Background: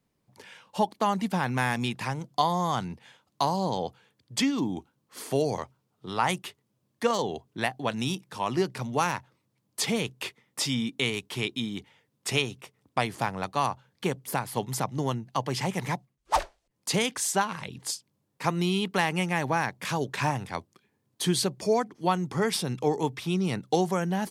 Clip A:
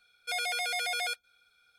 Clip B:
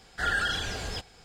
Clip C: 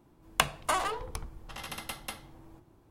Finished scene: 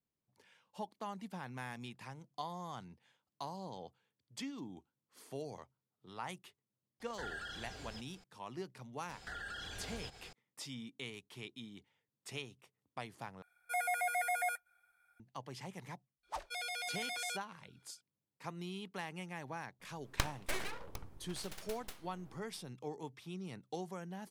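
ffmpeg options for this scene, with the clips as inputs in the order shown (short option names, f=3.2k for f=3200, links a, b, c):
-filter_complex "[2:a]asplit=2[a][b];[1:a]asplit=2[c][d];[0:a]volume=-18dB[e];[a]acompressor=threshold=-50dB:ratio=1.5:attack=26:release=132:knee=1:detection=peak[f];[b]acompressor=threshold=-42dB:ratio=6:attack=3.2:release=140:knee=1:detection=peak[g];[c]firequalizer=gain_entry='entry(190,0);entry(330,-12);entry(690,13);entry(1300,6);entry(1900,14);entry(2700,-9);entry(4500,-13);entry(7700,4);entry(12000,10)':delay=0.05:min_phase=1[h];[3:a]aeval=exprs='abs(val(0))':c=same[i];[e]asplit=2[j][k];[j]atrim=end=13.424[l];[h]atrim=end=1.78,asetpts=PTS-STARTPTS,volume=-10.5dB[m];[k]atrim=start=15.196[n];[f]atrim=end=1.24,asetpts=PTS-STARTPTS,volume=-9.5dB,afade=t=in:d=0.004:c=hsin,afade=t=out:st=1.236:d=0.004:c=hsin,adelay=7000[o];[g]atrim=end=1.24,asetpts=PTS-STARTPTS,volume=-1.5dB,afade=t=in:d=0.004:c=hsin,afade=t=out:st=1.236:d=0.004:c=hsin,adelay=9090[p];[d]atrim=end=1.78,asetpts=PTS-STARTPTS,volume=-9dB,afade=t=in:d=0.004:c=hsin,afade=t=out:st=1.776:d=0.004:c=hsin,adelay=16230[q];[i]atrim=end=2.9,asetpts=PTS-STARTPTS,volume=-7dB,afade=t=in:d=0.004:c=hsin,afade=t=out:st=2.896:d=0.004:c=hsin,adelay=19800[r];[l][m]acrossfade=d=0.004:c1=hsin:c2=hsin[s];[s][n]acrossfade=d=0.004:c1=hsin:c2=hsin[t];[t][o][p][q][r]amix=inputs=5:normalize=0"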